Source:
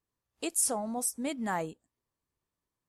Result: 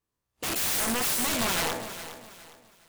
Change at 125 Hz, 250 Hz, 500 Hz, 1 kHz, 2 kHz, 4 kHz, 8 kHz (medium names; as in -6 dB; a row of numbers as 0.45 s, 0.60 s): +6.0 dB, +1.5 dB, +2.5 dB, +4.0 dB, +11.0 dB, +15.0 dB, +2.5 dB